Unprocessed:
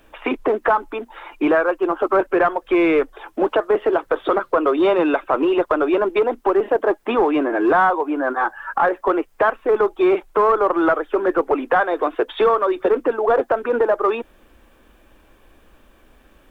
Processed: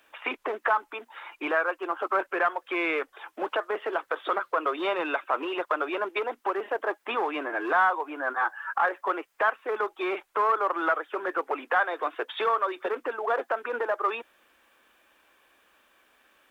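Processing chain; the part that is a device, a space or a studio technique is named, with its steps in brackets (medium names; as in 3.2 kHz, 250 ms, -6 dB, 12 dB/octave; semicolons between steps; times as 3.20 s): filter by subtraction (in parallel: low-pass 1.7 kHz 12 dB/octave + polarity flip); on the sum: trim -5 dB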